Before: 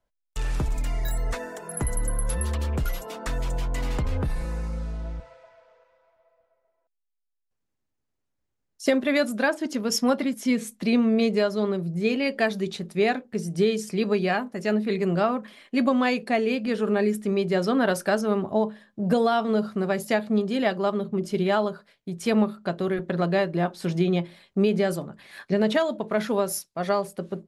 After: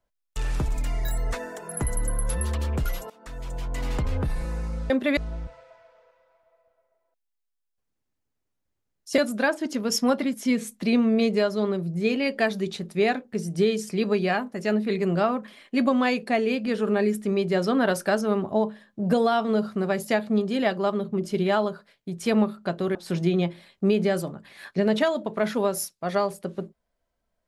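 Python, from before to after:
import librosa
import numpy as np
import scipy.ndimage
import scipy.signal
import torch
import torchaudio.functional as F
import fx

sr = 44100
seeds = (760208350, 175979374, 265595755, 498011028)

y = fx.edit(x, sr, fx.fade_in_from(start_s=3.1, length_s=0.85, floor_db=-22.5),
    fx.move(start_s=8.91, length_s=0.27, to_s=4.9),
    fx.cut(start_s=22.95, length_s=0.74), tone=tone)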